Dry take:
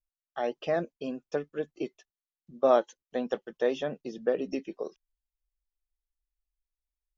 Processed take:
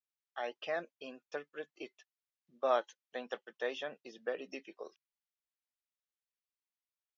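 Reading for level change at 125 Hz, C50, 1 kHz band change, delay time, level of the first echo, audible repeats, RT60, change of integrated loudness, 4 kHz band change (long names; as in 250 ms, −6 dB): below −20 dB, no reverb audible, −6.0 dB, no echo audible, no echo audible, no echo audible, no reverb audible, −8.5 dB, −2.0 dB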